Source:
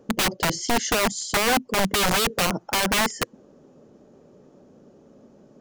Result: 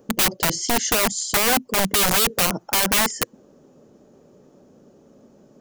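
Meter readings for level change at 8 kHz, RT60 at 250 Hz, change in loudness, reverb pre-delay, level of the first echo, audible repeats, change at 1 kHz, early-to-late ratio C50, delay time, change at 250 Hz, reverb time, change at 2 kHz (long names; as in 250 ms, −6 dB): +5.5 dB, no reverb audible, +3.5 dB, no reverb audible, no echo audible, no echo audible, 0.0 dB, no reverb audible, no echo audible, 0.0 dB, no reverb audible, +0.5 dB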